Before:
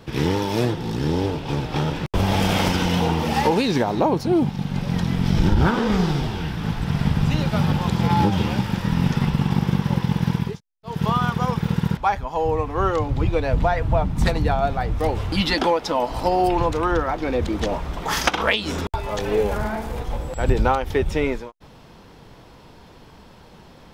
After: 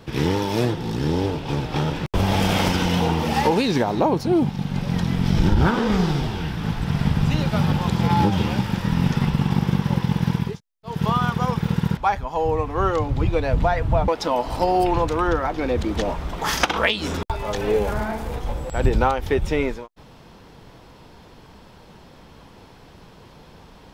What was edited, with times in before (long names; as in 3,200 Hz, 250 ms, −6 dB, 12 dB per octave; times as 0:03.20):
0:14.08–0:15.72: remove